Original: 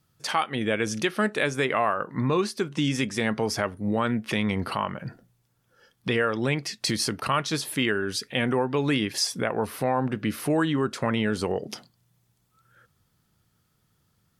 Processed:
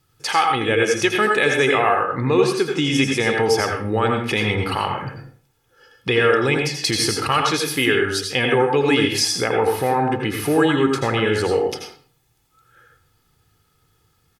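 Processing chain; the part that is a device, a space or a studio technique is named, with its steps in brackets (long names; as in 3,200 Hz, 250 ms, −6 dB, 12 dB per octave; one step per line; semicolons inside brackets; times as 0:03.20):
parametric band 2,500 Hz +2.5 dB
microphone above a desk (comb filter 2.4 ms, depth 53%; convolution reverb RT60 0.50 s, pre-delay 78 ms, DRR 1.5 dB)
level +4 dB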